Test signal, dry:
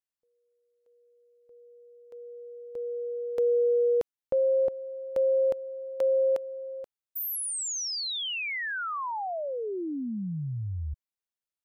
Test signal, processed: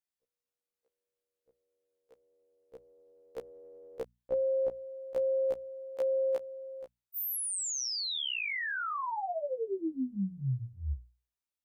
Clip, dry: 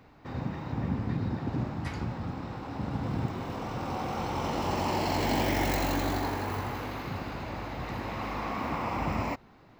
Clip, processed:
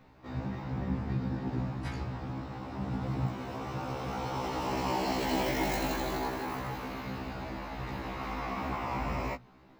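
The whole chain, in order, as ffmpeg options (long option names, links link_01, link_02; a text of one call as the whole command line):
ffmpeg -i in.wav -af "lowshelf=frequency=130:gain=4,bandreject=frequency=60:width_type=h:width=6,bandreject=frequency=120:width_type=h:width=6,bandreject=frequency=180:width_type=h:width=6,bandreject=frequency=240:width_type=h:width=6,afftfilt=real='re*1.73*eq(mod(b,3),0)':imag='im*1.73*eq(mod(b,3),0)':win_size=2048:overlap=0.75" out.wav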